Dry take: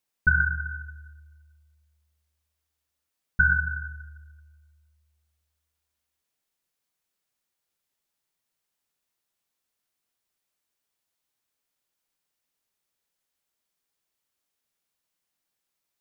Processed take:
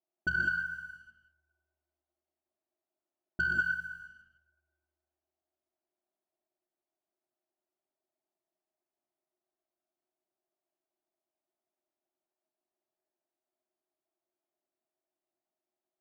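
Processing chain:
pair of resonant band-passes 480 Hz, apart 0.8 octaves
leveller curve on the samples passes 1
reverb whose tail is shaped and stops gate 220 ms rising, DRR 0.5 dB
level +7.5 dB

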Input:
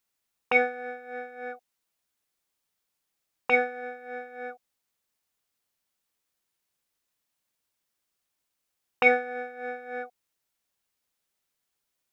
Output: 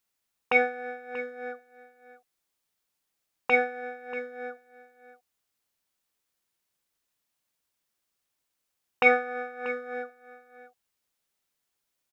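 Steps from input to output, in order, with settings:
0:09.05–0:09.94: parametric band 1,200 Hz +12.5 dB 0.22 octaves
single-tap delay 636 ms −15.5 dB

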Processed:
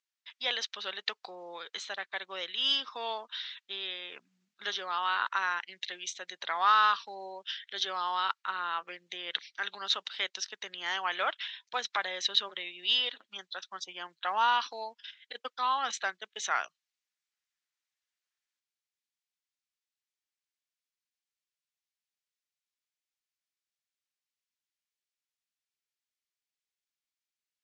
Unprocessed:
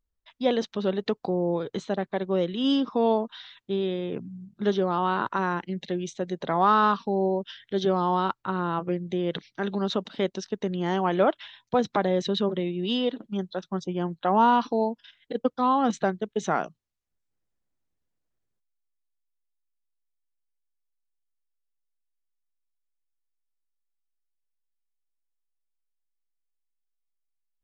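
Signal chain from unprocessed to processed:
flat-topped band-pass 3,500 Hz, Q 0.62
level +5.5 dB

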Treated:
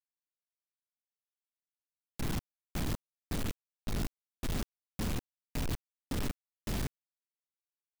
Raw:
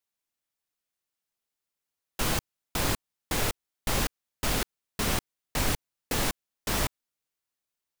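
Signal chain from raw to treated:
drawn EQ curve 270 Hz 0 dB, 490 Hz −16 dB, 4,200 Hz −16 dB, 8,100 Hz −22 dB
log-companded quantiser 2 bits
level −6 dB

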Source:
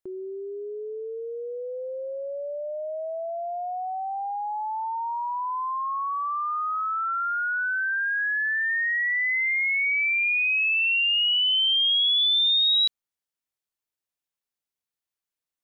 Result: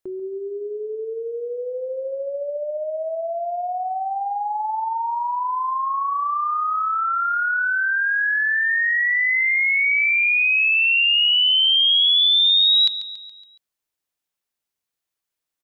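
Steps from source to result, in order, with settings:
mains-hum notches 50/100/150/200/250 Hz
repeating echo 140 ms, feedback 53%, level −13.5 dB
level +5 dB

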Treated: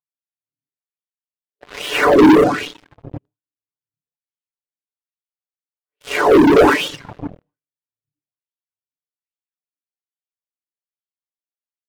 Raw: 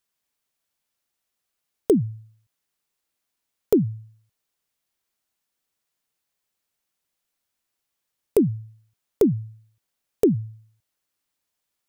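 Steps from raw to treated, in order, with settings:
sub-harmonics by changed cycles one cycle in 3, muted
extreme stretch with random phases 4.2×, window 0.25 s, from 0:08.71
automatic gain control gain up to 16 dB
LFO wah 1.2 Hz 280–3,300 Hz, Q 5
comb filter 6.8 ms, depth 58%
coupled-rooms reverb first 0.72 s, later 2.1 s, DRR 7.5 dB
leveller curve on the samples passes 5
noise gate with hold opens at −41 dBFS
reverb reduction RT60 0.77 s
amplitude modulation by smooth noise, depth 55%
level +3.5 dB

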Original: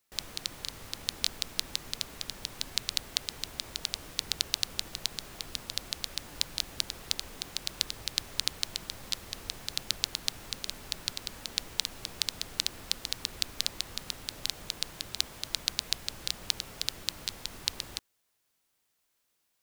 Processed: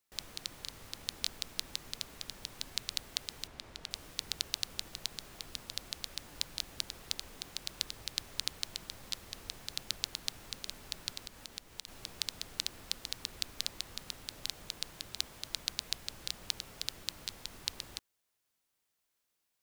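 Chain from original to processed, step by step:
0:03.47–0:03.91: low-pass filter 2,900 Hz 6 dB per octave
0:11.23–0:11.88: downward compressor 2.5 to 1, threshold −38 dBFS, peak gain reduction 11 dB
level −5.5 dB

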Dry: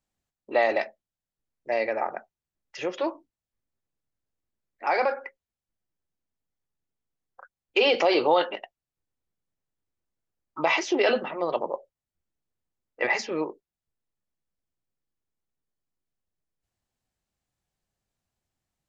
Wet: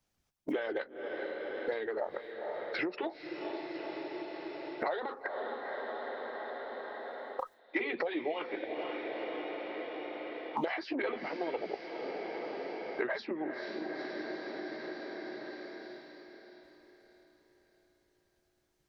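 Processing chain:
noise gate with hold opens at −42 dBFS
harmonic and percussive parts rebalanced harmonic −14 dB
in parallel at +0.5 dB: downward compressor, threshold −35 dBFS, peak gain reduction 15 dB
on the sum: formants moved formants −4 semitones
on a send: feedback delay with all-pass diffusion 468 ms, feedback 43%, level −12 dB
on the sum: multiband upward and downward compressor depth 100%
level −6 dB

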